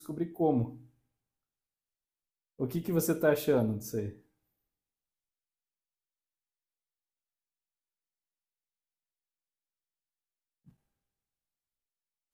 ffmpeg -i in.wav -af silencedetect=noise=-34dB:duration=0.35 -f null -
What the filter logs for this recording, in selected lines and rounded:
silence_start: 0.69
silence_end: 2.60 | silence_duration: 1.91
silence_start: 4.09
silence_end: 12.34 | silence_duration: 8.25